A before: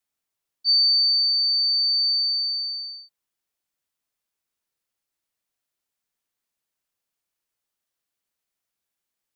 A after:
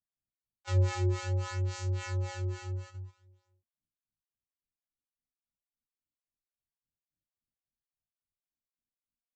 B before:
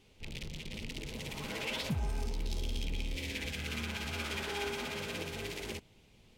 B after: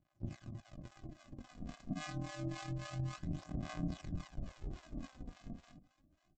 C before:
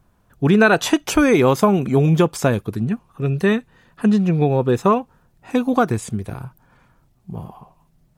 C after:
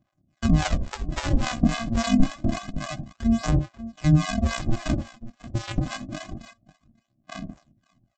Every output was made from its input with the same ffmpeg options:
-filter_complex "[0:a]afftfilt=real='real(if(lt(b,272),68*(eq(floor(b/68),0)*1+eq(floor(b/68),1)*0+eq(floor(b/68),2)*3+eq(floor(b/68),3)*2)+mod(b,68),b),0)':imag='imag(if(lt(b,272),68*(eq(floor(b/68),0)*1+eq(floor(b/68),1)*0+eq(floor(b/68),2)*3+eq(floor(b/68),3)*2)+mod(b,68),b),0)':win_size=2048:overlap=0.75,highshelf=f=2.2k:g=-11,aresample=16000,acrusher=samples=35:mix=1:aa=0.000001,aresample=44100,aecho=1:1:63|83|541:0.168|0.282|0.141,acrossover=split=600[a][b];[a]aeval=exprs='val(0)*(1-1/2+1/2*cos(2*PI*3.6*n/s))':c=same[c];[b]aeval=exprs='val(0)*(1-1/2-1/2*cos(2*PI*3.6*n/s))':c=same[d];[c][d]amix=inputs=2:normalize=0,adynamicequalizer=threshold=0.00282:dfrequency=430:dqfactor=3.7:tfrequency=430:tqfactor=3.7:attack=5:release=100:ratio=0.375:range=2.5:mode=cutabove:tftype=bell,aphaser=in_gain=1:out_gain=1:delay=4.3:decay=0.46:speed=0.27:type=sinusoidal,agate=range=-8dB:threshold=-46dB:ratio=16:detection=peak"

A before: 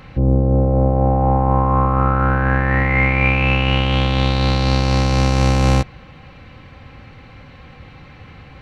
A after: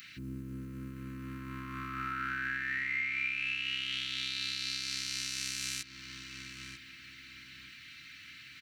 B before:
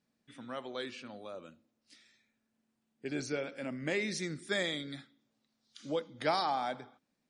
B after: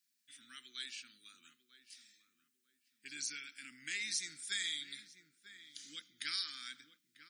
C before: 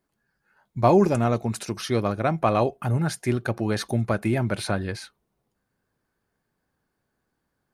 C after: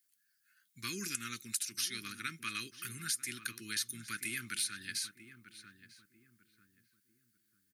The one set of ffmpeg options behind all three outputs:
-filter_complex "[0:a]asuperstop=centerf=670:order=8:qfactor=0.59,aderivative,asplit=2[a][b];[b]adelay=944,lowpass=f=1.1k:p=1,volume=-11dB,asplit=2[c][d];[d]adelay=944,lowpass=f=1.1k:p=1,volume=0.36,asplit=2[e][f];[f]adelay=944,lowpass=f=1.1k:p=1,volume=0.36,asplit=2[g][h];[h]adelay=944,lowpass=f=1.1k:p=1,volume=0.36[i];[c][e][g][i]amix=inputs=4:normalize=0[j];[a][j]amix=inputs=2:normalize=0,acompressor=threshold=-40dB:ratio=5,equalizer=f=520:t=o:w=0.35:g=11,volume=7.5dB"

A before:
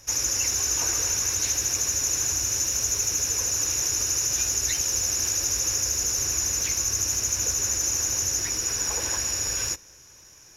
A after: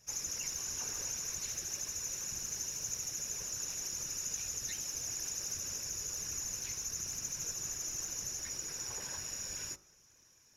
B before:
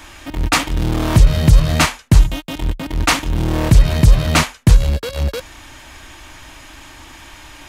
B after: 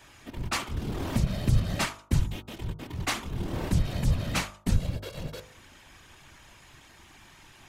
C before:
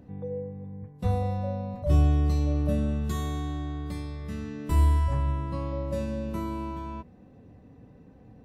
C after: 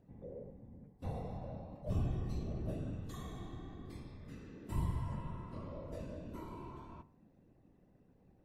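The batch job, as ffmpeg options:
-af "afftfilt=real='hypot(re,im)*cos(2*PI*random(0))':imag='hypot(re,im)*sin(2*PI*random(1))':win_size=512:overlap=0.75,bandreject=f=50.91:t=h:w=4,bandreject=f=101.82:t=h:w=4,bandreject=f=152.73:t=h:w=4,bandreject=f=203.64:t=h:w=4,bandreject=f=254.55:t=h:w=4,bandreject=f=305.46:t=h:w=4,bandreject=f=356.37:t=h:w=4,bandreject=f=407.28:t=h:w=4,bandreject=f=458.19:t=h:w=4,bandreject=f=509.1:t=h:w=4,bandreject=f=560.01:t=h:w=4,bandreject=f=610.92:t=h:w=4,bandreject=f=661.83:t=h:w=4,bandreject=f=712.74:t=h:w=4,bandreject=f=763.65:t=h:w=4,bandreject=f=814.56:t=h:w=4,bandreject=f=865.47:t=h:w=4,bandreject=f=916.38:t=h:w=4,bandreject=f=967.29:t=h:w=4,bandreject=f=1.0182k:t=h:w=4,bandreject=f=1.06911k:t=h:w=4,bandreject=f=1.12002k:t=h:w=4,bandreject=f=1.17093k:t=h:w=4,bandreject=f=1.22184k:t=h:w=4,bandreject=f=1.27275k:t=h:w=4,bandreject=f=1.32366k:t=h:w=4,bandreject=f=1.37457k:t=h:w=4,bandreject=f=1.42548k:t=h:w=4,bandreject=f=1.47639k:t=h:w=4,volume=-8dB"

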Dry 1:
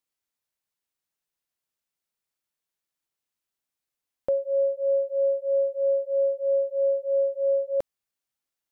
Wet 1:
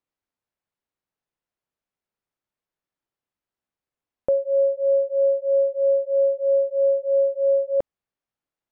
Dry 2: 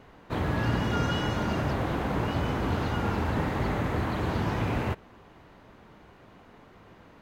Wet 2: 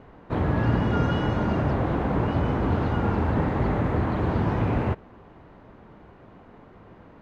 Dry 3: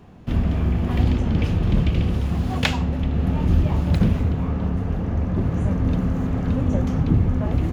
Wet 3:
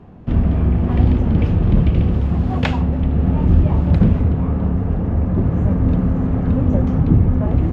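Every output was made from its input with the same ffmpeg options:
-af "lowpass=f=1.1k:p=1,volume=5dB"

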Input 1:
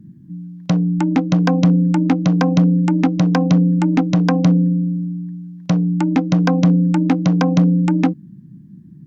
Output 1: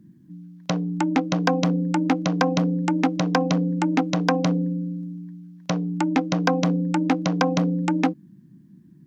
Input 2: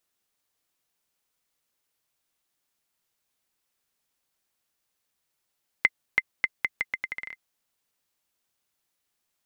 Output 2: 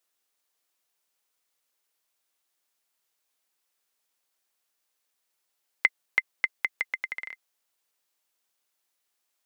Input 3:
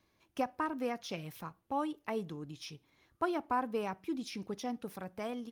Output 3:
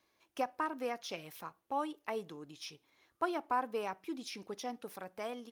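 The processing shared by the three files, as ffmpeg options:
-af "bass=f=250:g=-13,treble=f=4k:g=1"

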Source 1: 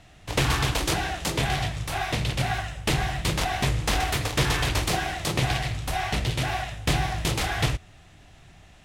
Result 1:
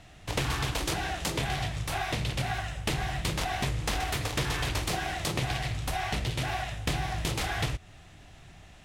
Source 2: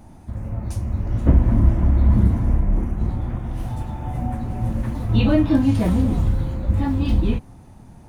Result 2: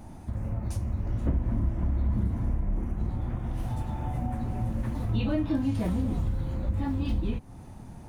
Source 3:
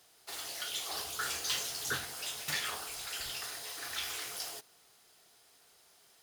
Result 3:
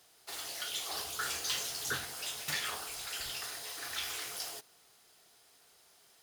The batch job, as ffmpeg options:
-af "acompressor=threshold=-29dB:ratio=2.5"

